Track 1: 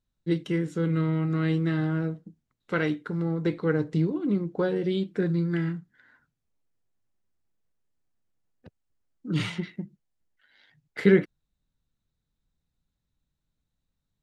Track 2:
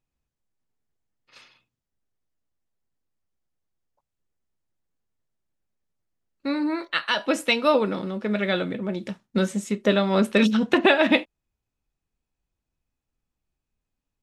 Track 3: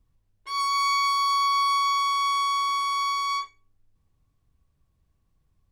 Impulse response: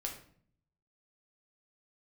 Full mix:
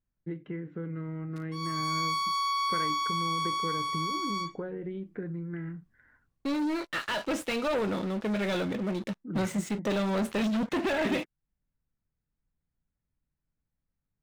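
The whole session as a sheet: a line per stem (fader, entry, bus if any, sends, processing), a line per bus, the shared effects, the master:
−3.5 dB, 0.00 s, no send, Chebyshev low-pass filter 2,100 Hz, order 3; downward compressor 4 to 1, threshold −31 dBFS, peak gain reduction 14.5 dB
−18.5 dB, 0.00 s, no send, leveller curve on the samples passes 5; slew-rate limiting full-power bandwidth 670 Hz
−8.0 dB, 1.05 s, send −11.5 dB, automatic ducking −7 dB, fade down 0.20 s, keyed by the second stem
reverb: on, RT60 0.55 s, pre-delay 6 ms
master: no processing

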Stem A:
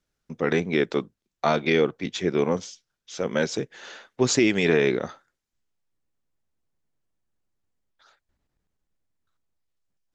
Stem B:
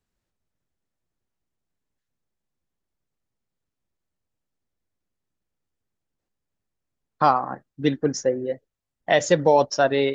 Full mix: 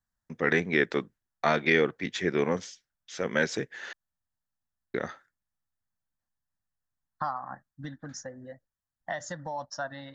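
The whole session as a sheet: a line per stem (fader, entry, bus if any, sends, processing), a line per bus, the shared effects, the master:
−4.0 dB, 0.00 s, muted 0:03.93–0:04.94, no send, noise gate with hold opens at −47 dBFS
−5.5 dB, 0.00 s, no send, downward compressor 3 to 1, threshold −25 dBFS, peak gain reduction 10 dB; phaser with its sweep stopped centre 1,000 Hz, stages 4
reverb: not used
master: parametric band 1,800 Hz +10.5 dB 0.57 octaves

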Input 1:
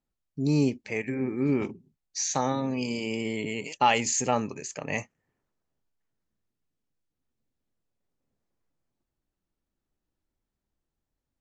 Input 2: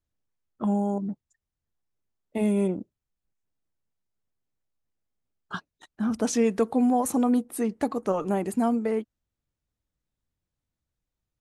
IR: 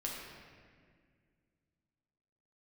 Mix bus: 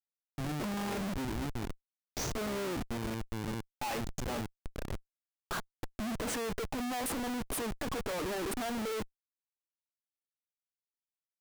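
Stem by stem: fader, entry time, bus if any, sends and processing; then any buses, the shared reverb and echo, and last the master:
−11.0 dB, 0.00 s, no send, high-shelf EQ 2,600 Hz −3.5 dB; hum removal 210.1 Hz, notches 7; tremolo along a rectified sine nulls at 2.3 Hz
+2.0 dB, 0.00 s, no send, high-pass filter 320 Hz 12 dB per octave; flat-topped bell 4,100 Hz −15 dB; downward compressor, threshold −28 dBFS, peak gain reduction 9 dB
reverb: not used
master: comparator with hysteresis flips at −43 dBFS

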